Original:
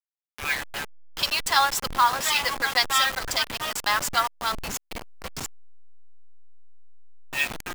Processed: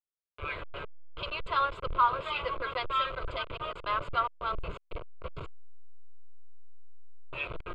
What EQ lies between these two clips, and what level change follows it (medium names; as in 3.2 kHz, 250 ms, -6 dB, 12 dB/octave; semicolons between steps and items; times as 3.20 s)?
tape spacing loss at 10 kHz 44 dB; static phaser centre 1.2 kHz, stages 8; +2.5 dB